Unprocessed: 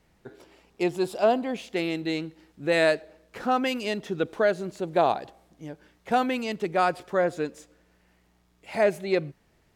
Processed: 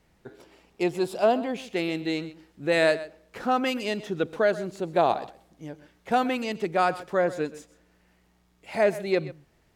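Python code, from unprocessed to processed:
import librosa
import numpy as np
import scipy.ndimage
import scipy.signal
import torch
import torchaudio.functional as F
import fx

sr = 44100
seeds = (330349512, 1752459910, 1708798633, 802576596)

y = x + 10.0 ** (-16.5 / 20.0) * np.pad(x, (int(128 * sr / 1000.0), 0))[:len(x)]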